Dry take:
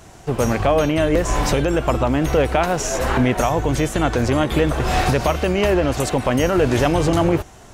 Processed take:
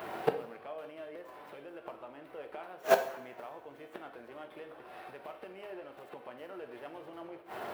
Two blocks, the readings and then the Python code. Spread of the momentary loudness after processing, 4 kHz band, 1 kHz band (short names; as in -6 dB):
16 LU, -23.5 dB, -18.5 dB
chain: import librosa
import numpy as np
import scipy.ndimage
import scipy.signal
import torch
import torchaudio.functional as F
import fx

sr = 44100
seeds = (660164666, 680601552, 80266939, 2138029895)

y = scipy.signal.medfilt(x, 9)
y = fx.gate_flip(y, sr, shuts_db=-14.0, range_db=-33)
y = scipy.signal.sosfilt(scipy.signal.butter(2, 400.0, 'highpass', fs=sr, output='sos'), y)
y = fx.peak_eq(y, sr, hz=6800.0, db=-15.0, octaves=0.76)
y = fx.rev_double_slope(y, sr, seeds[0], early_s=0.61, late_s=3.0, knee_db=-25, drr_db=6.0)
y = y * 10.0 ** (6.5 / 20.0)